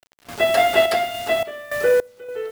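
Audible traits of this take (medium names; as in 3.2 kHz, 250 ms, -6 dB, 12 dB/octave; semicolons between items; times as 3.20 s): a quantiser's noise floor 6-bit, dither none; random-step tremolo 3.5 Hz, depth 95%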